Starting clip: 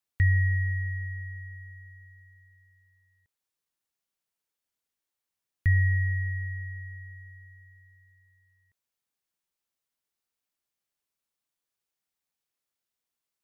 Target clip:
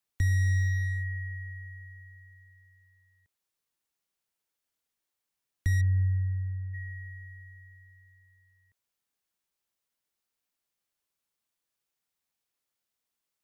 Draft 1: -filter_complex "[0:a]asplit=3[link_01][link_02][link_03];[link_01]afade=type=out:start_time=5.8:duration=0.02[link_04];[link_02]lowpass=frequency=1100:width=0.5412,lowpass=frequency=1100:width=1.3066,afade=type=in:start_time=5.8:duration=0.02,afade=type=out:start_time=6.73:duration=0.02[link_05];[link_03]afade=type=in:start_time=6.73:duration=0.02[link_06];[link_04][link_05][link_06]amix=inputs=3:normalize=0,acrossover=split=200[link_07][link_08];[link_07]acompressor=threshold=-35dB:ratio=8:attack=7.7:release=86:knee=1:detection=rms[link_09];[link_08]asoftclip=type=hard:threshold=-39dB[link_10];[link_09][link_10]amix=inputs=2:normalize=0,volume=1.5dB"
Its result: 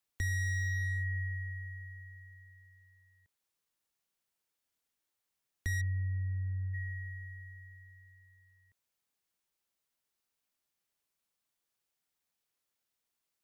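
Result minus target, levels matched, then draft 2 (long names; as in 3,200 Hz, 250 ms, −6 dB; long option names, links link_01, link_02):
downward compressor: peak gain reduction +9.5 dB
-filter_complex "[0:a]asplit=3[link_01][link_02][link_03];[link_01]afade=type=out:start_time=5.8:duration=0.02[link_04];[link_02]lowpass=frequency=1100:width=0.5412,lowpass=frequency=1100:width=1.3066,afade=type=in:start_time=5.8:duration=0.02,afade=type=out:start_time=6.73:duration=0.02[link_05];[link_03]afade=type=in:start_time=6.73:duration=0.02[link_06];[link_04][link_05][link_06]amix=inputs=3:normalize=0,acrossover=split=200[link_07][link_08];[link_07]acompressor=threshold=-24dB:ratio=8:attack=7.7:release=86:knee=1:detection=rms[link_09];[link_08]asoftclip=type=hard:threshold=-39dB[link_10];[link_09][link_10]amix=inputs=2:normalize=0,volume=1.5dB"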